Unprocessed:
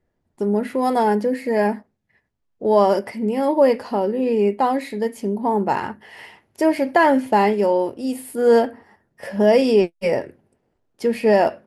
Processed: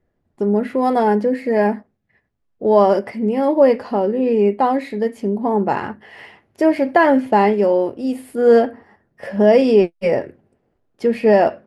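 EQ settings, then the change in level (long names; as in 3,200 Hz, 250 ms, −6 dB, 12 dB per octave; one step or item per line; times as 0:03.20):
low-pass filter 2,600 Hz 6 dB per octave
notch filter 920 Hz, Q 14
+3.0 dB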